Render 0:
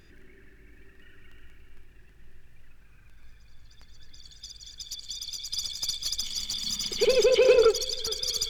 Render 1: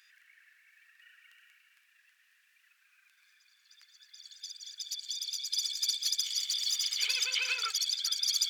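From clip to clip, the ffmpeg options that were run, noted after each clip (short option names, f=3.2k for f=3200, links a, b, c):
-af "highpass=f=1.5k:w=0.5412,highpass=f=1.5k:w=1.3066"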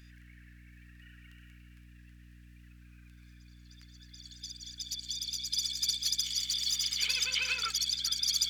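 -af "aeval=exprs='val(0)+0.00224*(sin(2*PI*60*n/s)+sin(2*PI*2*60*n/s)/2+sin(2*PI*3*60*n/s)/3+sin(2*PI*4*60*n/s)/4+sin(2*PI*5*60*n/s)/5)':c=same"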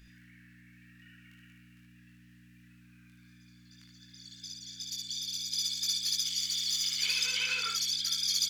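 -af "aecho=1:1:22|60|76:0.668|0.447|0.596,volume=-2.5dB"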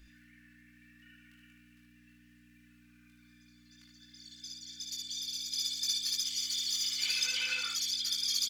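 -af "aecho=1:1:3.4:0.84,volume=-4dB"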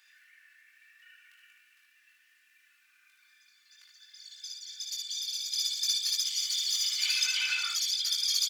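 -af "highpass=f=860:w=0.5412,highpass=f=860:w=1.3066,volume=3.5dB"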